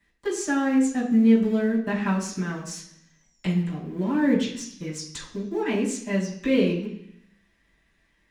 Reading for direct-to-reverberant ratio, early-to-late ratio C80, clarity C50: −10.0 dB, 10.0 dB, 7.0 dB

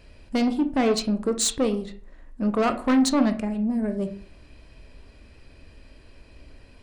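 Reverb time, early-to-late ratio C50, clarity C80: 0.45 s, 12.5 dB, 18.0 dB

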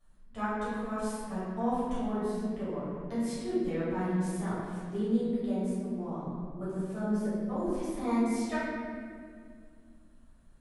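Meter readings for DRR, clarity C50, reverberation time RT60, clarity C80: −12.5 dB, −3.5 dB, 2.1 s, −0.5 dB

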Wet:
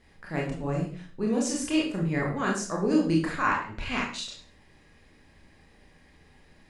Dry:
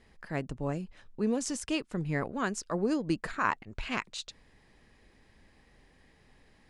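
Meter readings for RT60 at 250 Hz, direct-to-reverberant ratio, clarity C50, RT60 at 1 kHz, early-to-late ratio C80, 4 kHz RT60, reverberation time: 0.60 s, −3.0 dB, 5.5 dB, 0.40 s, 10.0 dB, 0.40 s, 0.45 s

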